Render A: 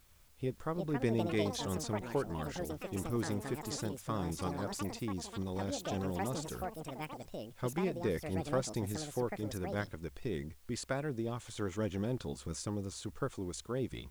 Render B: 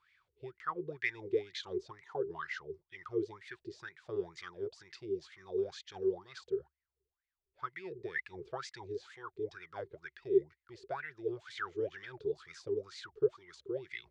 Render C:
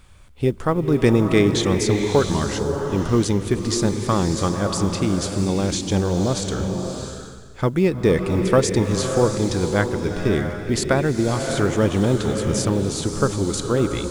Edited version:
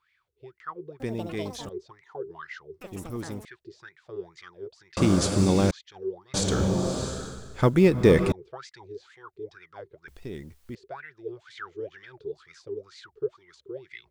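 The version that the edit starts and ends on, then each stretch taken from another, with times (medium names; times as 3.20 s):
B
1.00–1.69 s: from A
2.81–3.45 s: from A
4.97–5.71 s: from C
6.34–8.32 s: from C
10.08–10.75 s: from A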